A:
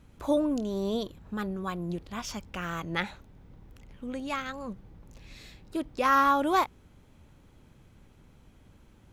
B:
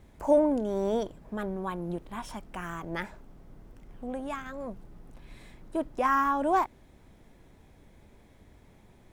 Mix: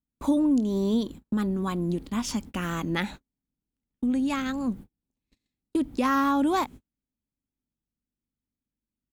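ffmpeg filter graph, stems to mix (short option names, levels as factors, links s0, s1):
-filter_complex "[0:a]lowpass=f=5400:t=q:w=1.6,equalizer=f=250:t=o:w=0.82:g=14,volume=1.26[s0];[1:a]aeval=exprs='val(0)+0.00891*(sin(2*PI*50*n/s)+sin(2*PI*2*50*n/s)/2+sin(2*PI*3*50*n/s)/3+sin(2*PI*4*50*n/s)/4+sin(2*PI*5*50*n/s)/5)':c=same,adelay=1.2,volume=0.335[s1];[s0][s1]amix=inputs=2:normalize=0,agate=range=0.00708:threshold=0.0158:ratio=16:detection=peak,aexciter=amount=8.8:drive=2.9:freq=7800,acompressor=threshold=0.0562:ratio=2"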